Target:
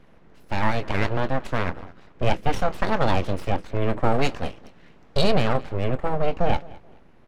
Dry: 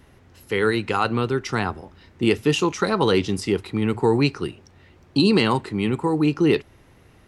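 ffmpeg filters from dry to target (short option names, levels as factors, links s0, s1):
-filter_complex "[0:a]asplit=2[s0][s1];[s1]adelay=23,volume=0.224[s2];[s0][s2]amix=inputs=2:normalize=0,aecho=1:1:213|426:0.0841|0.0244,aeval=exprs='abs(val(0))':c=same,asetnsamples=n=441:p=0,asendcmd='4.12 lowpass f 3000;5.32 lowpass f 1100',lowpass=f=1600:p=1,volume=1.19"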